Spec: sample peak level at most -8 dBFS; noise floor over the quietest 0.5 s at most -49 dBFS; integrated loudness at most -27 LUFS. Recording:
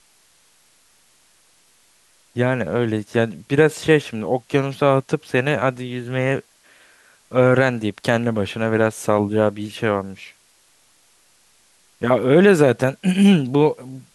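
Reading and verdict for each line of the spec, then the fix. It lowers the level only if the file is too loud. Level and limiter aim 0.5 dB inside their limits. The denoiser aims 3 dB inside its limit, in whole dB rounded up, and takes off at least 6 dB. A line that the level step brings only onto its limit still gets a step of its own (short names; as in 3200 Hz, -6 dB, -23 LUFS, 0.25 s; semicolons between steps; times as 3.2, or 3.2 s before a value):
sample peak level -2.5 dBFS: fail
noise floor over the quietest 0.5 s -57 dBFS: OK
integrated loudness -19.0 LUFS: fail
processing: gain -8.5 dB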